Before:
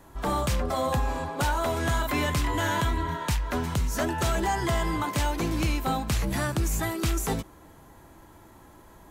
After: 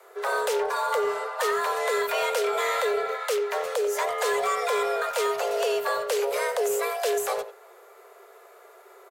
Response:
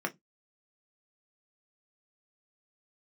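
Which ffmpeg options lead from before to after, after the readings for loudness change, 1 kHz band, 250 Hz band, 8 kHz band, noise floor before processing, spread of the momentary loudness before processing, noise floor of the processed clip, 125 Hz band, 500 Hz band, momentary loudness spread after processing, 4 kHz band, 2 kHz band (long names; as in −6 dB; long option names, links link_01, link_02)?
+1.5 dB, +2.0 dB, below −10 dB, 0.0 dB, −52 dBFS, 3 LU, −52 dBFS, below −35 dB, +8.0 dB, 3 LU, +0.5 dB, +2.5 dB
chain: -filter_complex "[0:a]afreqshift=360,asplit=2[link_01][link_02];[link_02]adelay=90,highpass=300,lowpass=3400,asoftclip=type=hard:threshold=-22.5dB,volume=-11dB[link_03];[link_01][link_03]amix=inputs=2:normalize=0"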